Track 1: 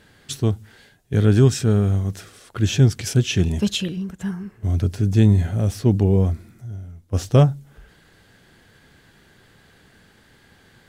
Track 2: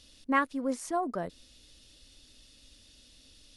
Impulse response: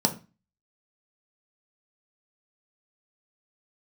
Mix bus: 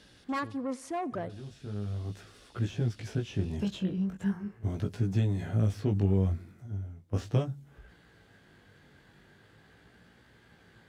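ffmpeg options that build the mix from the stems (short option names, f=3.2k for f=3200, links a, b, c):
-filter_complex "[0:a]aeval=exprs='if(lt(val(0),0),0.708*val(0),val(0))':c=same,acrossover=split=400|1200|3700[a][b][c][d];[a]acompressor=threshold=-21dB:ratio=4[e];[b]acompressor=threshold=-37dB:ratio=4[f];[c]acompressor=threshold=-42dB:ratio=4[g];[d]acompressor=threshold=-44dB:ratio=4[h];[e][f][g][h]amix=inputs=4:normalize=0,flanger=delay=16.5:depth=4.6:speed=0.39,volume=-0.5dB[i];[1:a]asoftclip=type=tanh:threshold=-29dB,volume=1dB,asplit=3[j][k][l];[k]volume=-23dB[m];[l]apad=whole_len=480184[n];[i][n]sidechaincompress=threshold=-52dB:ratio=8:attack=11:release=840[o];[m]aecho=0:1:86|172|258|344|430|516|602|688:1|0.52|0.27|0.141|0.0731|0.038|0.0198|0.0103[p];[o][j][p]amix=inputs=3:normalize=0,highpass=45,highshelf=f=4.1k:g=-9"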